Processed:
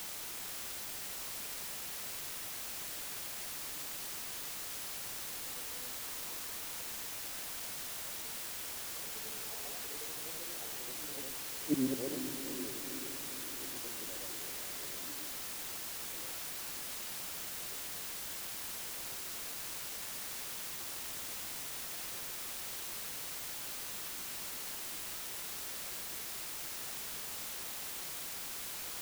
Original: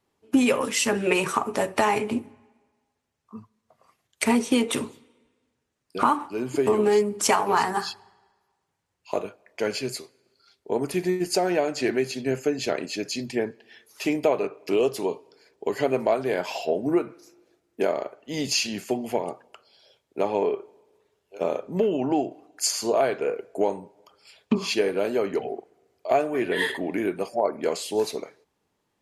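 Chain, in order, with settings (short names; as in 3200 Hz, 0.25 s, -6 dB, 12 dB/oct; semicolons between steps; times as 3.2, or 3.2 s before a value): short-time reversal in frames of 0.241 s; Doppler pass-by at 11.71, 56 m/s, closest 2.9 m; treble ducked by the level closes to 350 Hz, closed at -52 dBFS; in parallel at -10.5 dB: requantised 6-bit, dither triangular; on the sum: diffused feedback echo 0.463 s, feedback 58%, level -9.5 dB; gain +3.5 dB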